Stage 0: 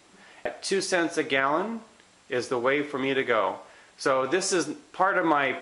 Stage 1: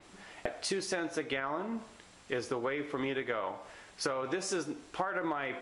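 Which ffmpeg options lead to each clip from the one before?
-af "lowshelf=f=78:g=11.5,acompressor=threshold=0.0282:ratio=6,adynamicequalizer=threshold=0.00282:dfrequency=3800:dqfactor=0.7:tfrequency=3800:tqfactor=0.7:attack=5:release=100:ratio=0.375:range=2:mode=cutabove:tftype=highshelf"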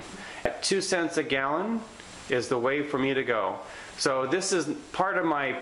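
-af "acompressor=mode=upward:threshold=0.00708:ratio=2.5,volume=2.51"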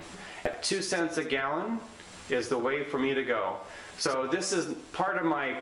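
-af "aecho=1:1:12|80:0.631|0.266,volume=0.596"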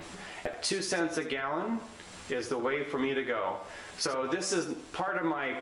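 -af "alimiter=limit=0.106:level=0:latency=1:release=214"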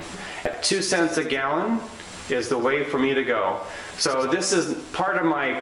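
-af "aecho=1:1:191:0.106,volume=2.82"

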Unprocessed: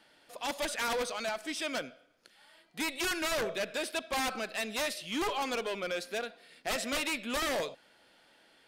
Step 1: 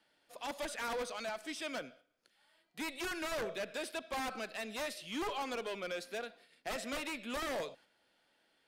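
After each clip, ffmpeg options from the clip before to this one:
-filter_complex "[0:a]agate=range=0.501:threshold=0.00178:ratio=16:detection=peak,acrossover=split=220|2000[s0][s1][s2];[s2]alimiter=level_in=2.24:limit=0.0631:level=0:latency=1:release=104,volume=0.447[s3];[s0][s1][s3]amix=inputs=3:normalize=0,volume=0.562"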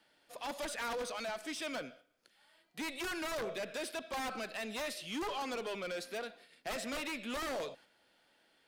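-af "asoftclip=type=tanh:threshold=0.0141,volume=1.5"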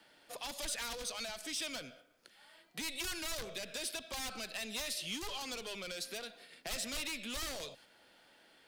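-filter_complex "[0:a]acrossover=split=120|3000[s0][s1][s2];[s1]acompressor=threshold=0.00251:ratio=6[s3];[s0][s3][s2]amix=inputs=3:normalize=0,volume=2.11"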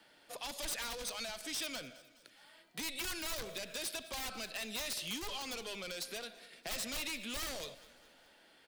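-af "aeval=exprs='(mod(31.6*val(0)+1,2)-1)/31.6':c=same,aecho=1:1:208|416|624|832:0.1|0.055|0.0303|0.0166"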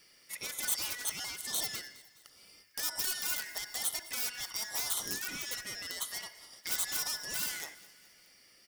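-af "afftfilt=real='real(if(lt(b,272),68*(eq(floor(b/68),0)*2+eq(floor(b/68),1)*0+eq(floor(b/68),2)*3+eq(floor(b/68),3)*1)+mod(b,68),b),0)':imag='imag(if(lt(b,272),68*(eq(floor(b/68),0)*2+eq(floor(b/68),1)*0+eq(floor(b/68),2)*3+eq(floor(b/68),3)*1)+mod(b,68),b),0)':win_size=2048:overlap=0.75,crystalizer=i=2.5:c=0,volume=0.708"

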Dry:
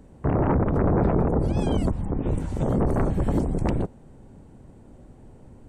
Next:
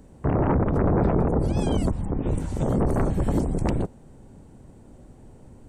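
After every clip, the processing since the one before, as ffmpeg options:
-af "bass=f=250:g=0,treble=f=4000:g=5"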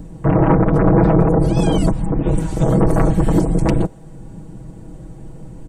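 -filter_complex "[0:a]aecho=1:1:6.2:0.88,acrossover=split=300|1300|4800[s0][s1][s2][s3];[s0]acompressor=mode=upward:threshold=0.0251:ratio=2.5[s4];[s4][s1][s2][s3]amix=inputs=4:normalize=0,volume=2"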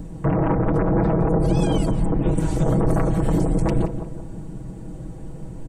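-filter_complex "[0:a]alimiter=limit=0.251:level=0:latency=1:release=73,asplit=2[s0][s1];[s1]adelay=177,lowpass=f=1600:p=1,volume=0.355,asplit=2[s2][s3];[s3]adelay=177,lowpass=f=1600:p=1,volume=0.47,asplit=2[s4][s5];[s5]adelay=177,lowpass=f=1600:p=1,volume=0.47,asplit=2[s6][s7];[s7]adelay=177,lowpass=f=1600:p=1,volume=0.47,asplit=2[s8][s9];[s9]adelay=177,lowpass=f=1600:p=1,volume=0.47[s10];[s0][s2][s4][s6][s8][s10]amix=inputs=6:normalize=0"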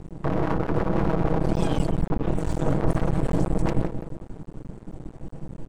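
-af "adynamicsmooth=sensitivity=8:basefreq=7600,aeval=exprs='max(val(0),0)':c=same"

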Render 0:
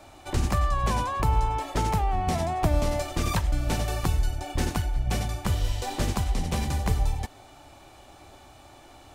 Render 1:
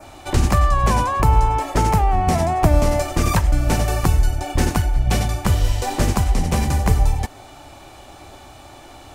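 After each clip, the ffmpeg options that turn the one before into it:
-af "adynamicequalizer=threshold=0.00224:dfrequency=3600:dqfactor=1.9:tfrequency=3600:tqfactor=1.9:attack=5:release=100:ratio=0.375:range=3:mode=cutabove:tftype=bell,volume=2.66"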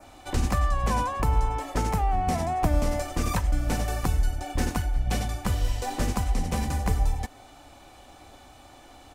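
-af "aecho=1:1:4:0.3,volume=0.376"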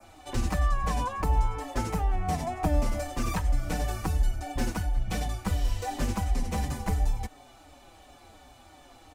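-filter_complex "[0:a]acrossover=split=140|830|5600[s0][s1][s2][s3];[s3]asoftclip=type=hard:threshold=0.0112[s4];[s0][s1][s2][s4]amix=inputs=4:normalize=0,asplit=2[s5][s6];[s6]adelay=5.4,afreqshift=-2.8[s7];[s5][s7]amix=inputs=2:normalize=1"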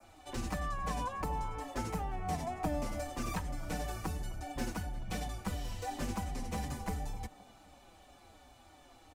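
-filter_complex "[0:a]acrossover=split=130|1600[s0][s1][s2];[s0]asoftclip=type=tanh:threshold=0.0282[s3];[s1]aecho=1:1:259|518|777|1036|1295:0.126|0.068|0.0367|0.0198|0.0107[s4];[s3][s4][s2]amix=inputs=3:normalize=0,volume=0.501"

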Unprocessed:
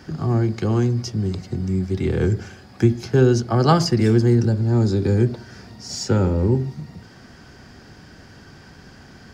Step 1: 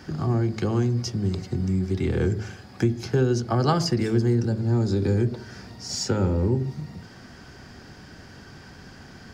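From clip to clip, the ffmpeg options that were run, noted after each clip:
-af "acompressor=threshold=0.0891:ratio=2,bandreject=f=54.02:t=h:w=4,bandreject=f=108.04:t=h:w=4,bandreject=f=162.06:t=h:w=4,bandreject=f=216.08:t=h:w=4,bandreject=f=270.1:t=h:w=4,bandreject=f=324.12:t=h:w=4,bandreject=f=378.14:t=h:w=4,bandreject=f=432.16:t=h:w=4,bandreject=f=486.18:t=h:w=4,bandreject=f=540.2:t=h:w=4,bandreject=f=594.22:t=h:w=4,bandreject=f=648.24:t=h:w=4,bandreject=f=702.26:t=h:w=4"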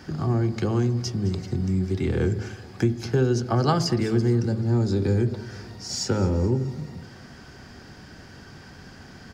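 -af "aecho=1:1:214|428|642|856:0.126|0.0642|0.0327|0.0167"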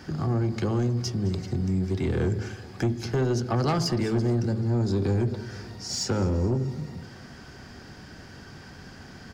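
-af "asoftclip=type=tanh:threshold=0.119"

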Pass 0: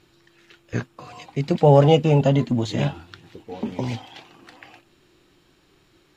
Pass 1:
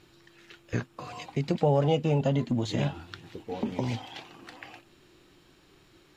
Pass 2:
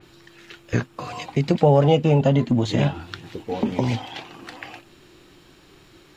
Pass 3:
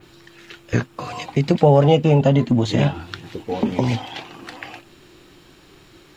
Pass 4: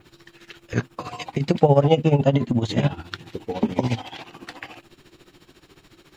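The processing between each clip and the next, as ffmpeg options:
-af "acompressor=threshold=0.0398:ratio=2"
-af "adynamicequalizer=threshold=0.00398:dfrequency=3600:dqfactor=0.7:tfrequency=3600:tqfactor=0.7:attack=5:release=100:ratio=0.375:range=2:mode=cutabove:tftype=highshelf,volume=2.51"
-af "acrusher=bits=11:mix=0:aa=0.000001,volume=1.33"
-af "tremolo=f=14:d=0.78"

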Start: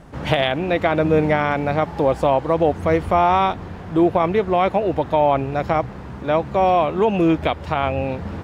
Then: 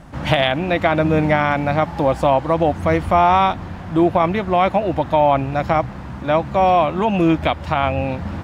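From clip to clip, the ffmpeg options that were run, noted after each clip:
-af "equalizer=f=430:w=4.2:g=-11,volume=1.41"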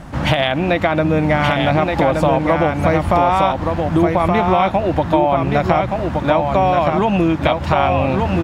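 -filter_complex "[0:a]acompressor=threshold=0.112:ratio=6,asplit=2[s0][s1];[s1]aecho=0:1:1173:0.631[s2];[s0][s2]amix=inputs=2:normalize=0,volume=2.11"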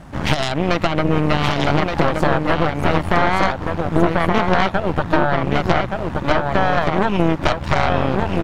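-af "aeval=exprs='0.891*(cos(1*acos(clip(val(0)/0.891,-1,1)))-cos(1*PI/2))+0.398*(cos(4*acos(clip(val(0)/0.891,-1,1)))-cos(4*PI/2))':c=same,volume=0.596"

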